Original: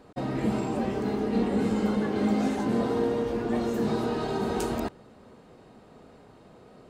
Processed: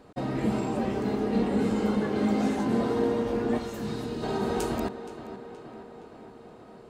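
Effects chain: 3.57–4.22 bell 290 Hz -> 1100 Hz -14 dB 2.3 oct; tape echo 0.471 s, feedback 71%, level -11.5 dB, low-pass 3700 Hz

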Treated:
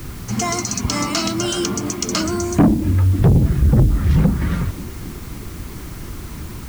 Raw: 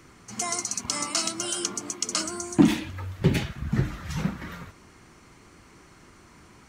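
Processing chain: LPF 7200 Hz 12 dB/oct; low shelf 290 Hz +10 dB; treble ducked by the level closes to 390 Hz, closed at -12 dBFS; in parallel at -1 dB: compressor, threshold -32 dBFS, peak gain reduction 23 dB; on the sum: low shelf 100 Hz +10 dB; on a send: narrowing echo 0.272 s, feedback 81%, band-pass 340 Hz, level -17.5 dB; on the sum: soft clip -13.5 dBFS, distortion -6 dB; requantised 8-bit, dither triangular; gain +5.5 dB

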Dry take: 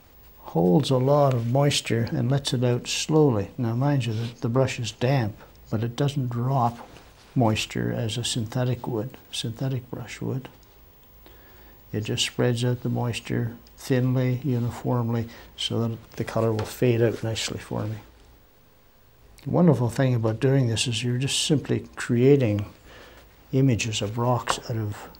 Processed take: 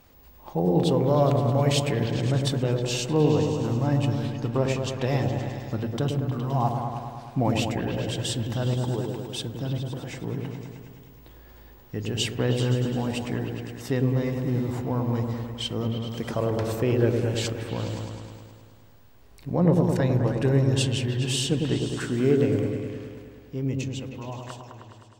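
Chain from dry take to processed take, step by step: ending faded out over 3.38 s; repeats that get brighter 0.104 s, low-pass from 750 Hz, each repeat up 1 oct, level -3 dB; gain -3.5 dB

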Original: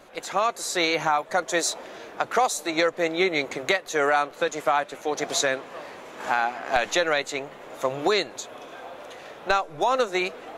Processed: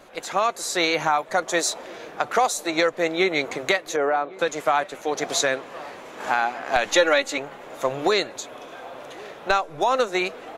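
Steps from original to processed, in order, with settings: 3.96–4.39 band-pass 440 Hz, Q 0.6; 6.92–7.38 comb 3.6 ms, depth 86%; outdoor echo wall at 190 m, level -21 dB; gain +1.5 dB

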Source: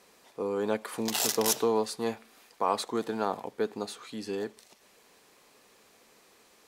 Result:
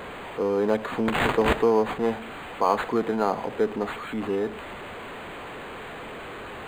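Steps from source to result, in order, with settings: zero-crossing step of -37 dBFS; decimation joined by straight lines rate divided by 8×; gain +5.5 dB

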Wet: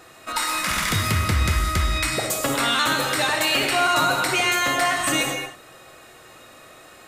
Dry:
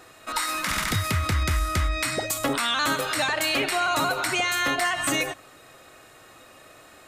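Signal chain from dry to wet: non-linear reverb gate 0.24 s flat, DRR 2 dB; gain +1.5 dB

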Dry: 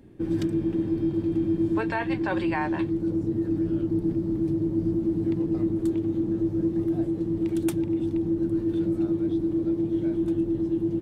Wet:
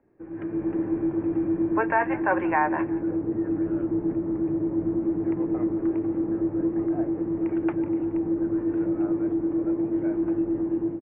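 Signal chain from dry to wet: steep low-pass 2600 Hz 48 dB/oct; three-band isolator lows -15 dB, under 430 Hz, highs -19 dB, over 2000 Hz; AGC gain up to 14 dB; frequency-shifting echo 0.176 s, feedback 45%, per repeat -46 Hz, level -20 dB; gain -5.5 dB

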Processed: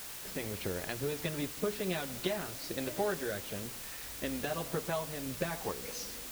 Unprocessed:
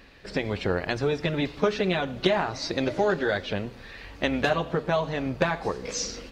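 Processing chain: rotary speaker horn 6.3 Hz, later 1.1 Hz, at 0.36; requantised 6-bit, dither triangular; gain -8.5 dB

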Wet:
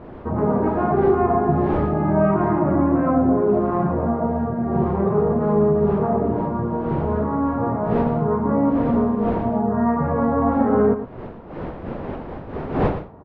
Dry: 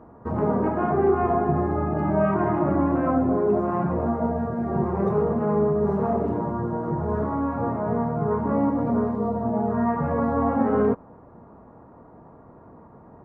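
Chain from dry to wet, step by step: wind noise 550 Hz -36 dBFS; air absorption 260 m; echo 0.115 s -10.5 dB; gain +3.5 dB

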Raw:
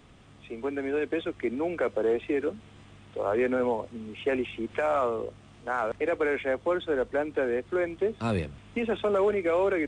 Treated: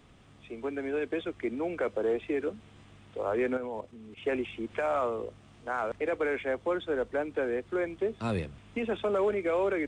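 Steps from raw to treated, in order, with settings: 3.57–4.23 level quantiser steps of 11 dB; gain -3 dB

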